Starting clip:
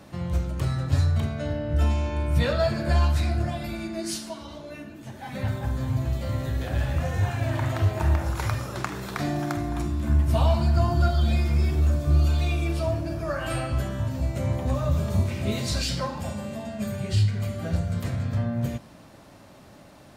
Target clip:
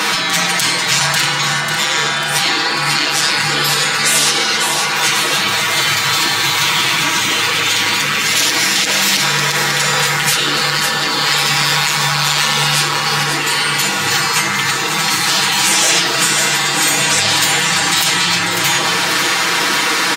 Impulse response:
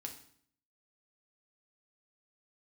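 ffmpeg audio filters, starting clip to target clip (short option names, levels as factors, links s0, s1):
-filter_complex "[0:a]asplit=2[s0][s1];[1:a]atrim=start_sample=2205,lowpass=8500,lowshelf=f=60:g=9[s2];[s1][s2]afir=irnorm=-1:irlink=0,volume=1.68[s3];[s0][s3]amix=inputs=2:normalize=0,asoftclip=type=tanh:threshold=0.398,highpass=f=370:w=0.5412,highpass=f=370:w=1.3066,acompressor=threshold=0.0126:ratio=8,afftfilt=real='re*lt(hypot(re,im),0.01)':imag='im*lt(hypot(re,im),0.01)':win_size=1024:overlap=0.75,aecho=1:1:6.2:0.82,aecho=1:1:544|1088|1632|2176|2720|3264|3808:0.447|0.241|0.13|0.0703|0.038|0.0205|0.0111,alimiter=level_in=59.6:limit=0.891:release=50:level=0:latency=1,volume=0.891"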